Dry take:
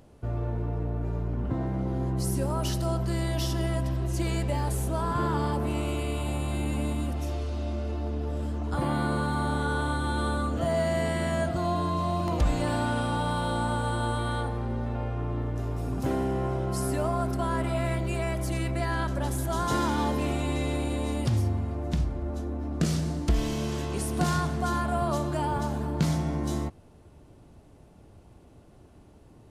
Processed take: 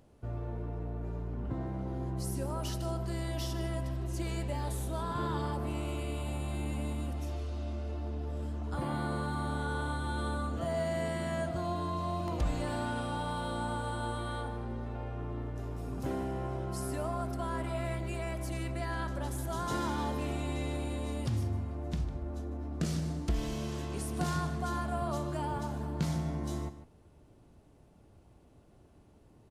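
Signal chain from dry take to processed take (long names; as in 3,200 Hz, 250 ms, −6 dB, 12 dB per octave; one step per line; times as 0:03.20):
0:04.60–0:05.42: parametric band 3,700 Hz +9.5 dB 0.25 octaves
slap from a distant wall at 26 metres, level −13 dB
level −7 dB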